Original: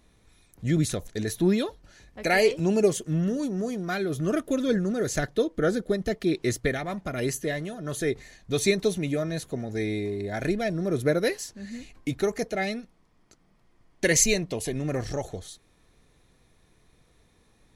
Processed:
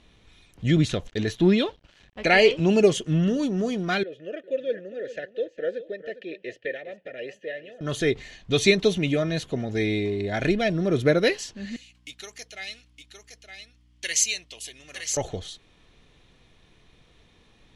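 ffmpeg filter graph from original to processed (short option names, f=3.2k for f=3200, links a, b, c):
-filter_complex "[0:a]asettb=1/sr,asplit=3[a][b][c];[a]atrim=end=0.774[d];[b]atrim=start=0.77:end=2.69,asetpts=PTS-STARTPTS,afade=t=in:d=0.004:c=qsin,afade=t=out:st=1.916:d=0.004:c=qsin,highshelf=f=7.5k:g=-9,aeval=exprs='sgn(val(0))*max(abs(val(0))-0.002,0)':c=same[e];[c]atrim=start=2.686[f];[d][e]acrossfade=d=0.004:c1=hsin:c2=qsin[g];[g][f]acrossfade=d=0.004:c1=qsin:c2=hsin,asettb=1/sr,asplit=3[h][i][j];[h]atrim=end=4.034[k];[i]atrim=start=4.03:end=7.81,asetpts=PTS-STARTPTS,afade=t=in:d=0.004:c=qsin,afade=t=out:st=3.776:d=0.004:c=qsin,asplit=3[l][m][n];[l]bandpass=f=530:t=q:w=8,volume=0dB[o];[m]bandpass=f=1.84k:t=q:w=8,volume=-6dB[p];[n]bandpass=f=2.48k:t=q:w=8,volume=-9dB[q];[o][p][q]amix=inputs=3:normalize=0,aecho=1:1:406:0.2,atrim=end_sample=166698[r];[j]atrim=start=7.806[s];[k][r]acrossfade=d=0.004:c1=hsin:c2=qsin[t];[t][s]acrossfade=d=0.004:c1=qsin:c2=hsin,asettb=1/sr,asplit=3[u][v][w];[u]atrim=end=11.764[x];[v]atrim=start=11.76:end=15.17,asetpts=PTS-STARTPTS,afade=t=in:d=0.004:c=qsin,afade=t=out:st=3.406:d=0.004:c=qsin,aderivative,aeval=exprs='val(0)+0.000708*(sin(2*PI*60*n/s)+sin(2*PI*2*60*n/s)/2+sin(2*PI*3*60*n/s)/3+sin(2*PI*4*60*n/s)/4+sin(2*PI*5*60*n/s)/5)':c=same,aecho=1:1:914:0.447,atrim=end_sample=150381[y];[w]atrim=start=15.166[z];[x][y]acrossfade=d=0.004:c1=hsin:c2=qsin[aa];[aa][z]acrossfade=d=0.004:c1=qsin:c2=hsin,lowpass=6.3k,equalizer=f=3k:t=o:w=0.56:g=10,volume=3.5dB"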